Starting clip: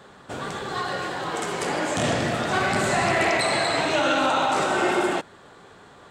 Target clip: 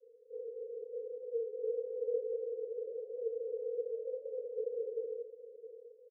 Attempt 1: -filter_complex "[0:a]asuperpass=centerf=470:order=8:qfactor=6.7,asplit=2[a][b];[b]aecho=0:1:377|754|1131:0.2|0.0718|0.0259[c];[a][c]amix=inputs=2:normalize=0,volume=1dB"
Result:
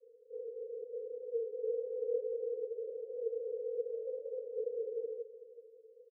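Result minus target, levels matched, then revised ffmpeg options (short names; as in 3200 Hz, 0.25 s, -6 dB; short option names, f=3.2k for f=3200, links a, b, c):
echo 0.286 s early
-filter_complex "[0:a]asuperpass=centerf=470:order=8:qfactor=6.7,asplit=2[a][b];[b]aecho=0:1:663|1326|1989:0.2|0.0718|0.0259[c];[a][c]amix=inputs=2:normalize=0,volume=1dB"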